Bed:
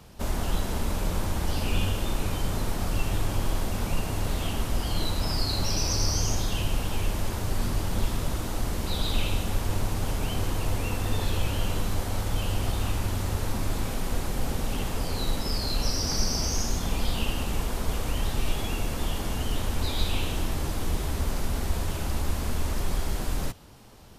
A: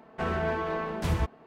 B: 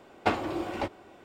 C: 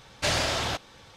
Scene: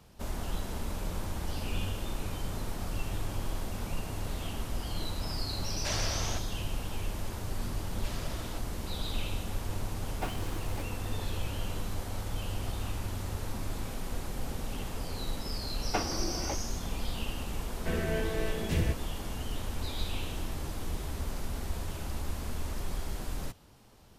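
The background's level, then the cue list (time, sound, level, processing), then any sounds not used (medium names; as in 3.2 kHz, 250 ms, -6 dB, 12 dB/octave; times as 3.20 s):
bed -7.5 dB
5.62 s: add C -10 dB
7.82 s: add C -12 dB + compression 2.5:1, threshold -34 dBFS
9.96 s: add B -12 dB + small samples zeroed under -29.5 dBFS
15.68 s: add B -6 dB
17.67 s: add A -1 dB + high-order bell 1 kHz -15 dB 1.1 oct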